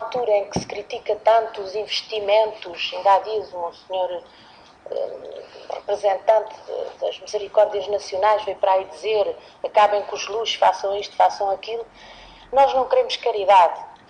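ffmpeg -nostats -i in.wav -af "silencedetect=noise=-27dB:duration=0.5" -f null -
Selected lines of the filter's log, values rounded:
silence_start: 4.18
silence_end: 4.86 | silence_duration: 0.68
silence_start: 11.82
silence_end: 12.53 | silence_duration: 0.71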